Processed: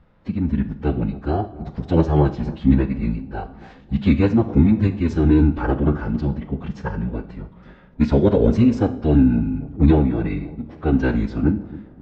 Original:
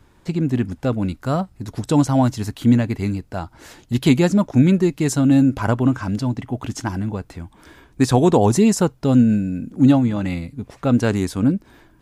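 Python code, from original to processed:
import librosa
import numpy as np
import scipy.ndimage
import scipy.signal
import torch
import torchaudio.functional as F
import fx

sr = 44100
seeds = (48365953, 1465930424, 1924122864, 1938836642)

y = fx.pitch_keep_formants(x, sr, semitones=-10.0)
y = fx.air_absorb(y, sr, metres=310.0)
y = fx.echo_bbd(y, sr, ms=271, stages=2048, feedback_pct=46, wet_db=-17.5)
y = fx.rev_schroeder(y, sr, rt60_s=0.53, comb_ms=27, drr_db=11.0)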